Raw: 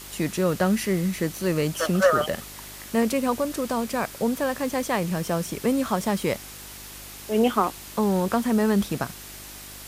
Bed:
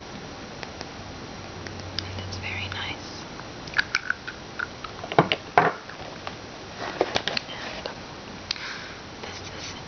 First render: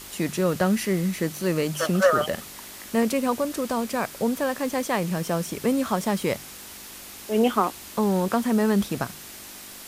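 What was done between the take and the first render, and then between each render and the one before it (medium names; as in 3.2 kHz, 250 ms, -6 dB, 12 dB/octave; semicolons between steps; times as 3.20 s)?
de-hum 50 Hz, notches 3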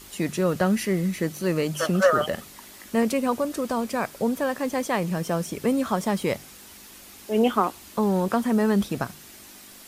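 noise reduction 6 dB, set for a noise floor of -42 dBFS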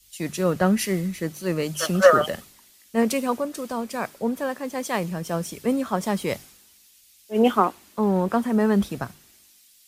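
three bands expanded up and down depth 100%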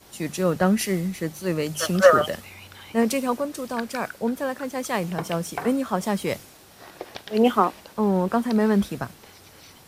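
add bed -13 dB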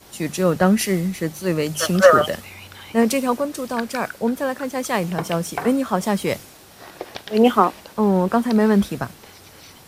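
trim +4 dB; peak limiter -1 dBFS, peak gain reduction 2 dB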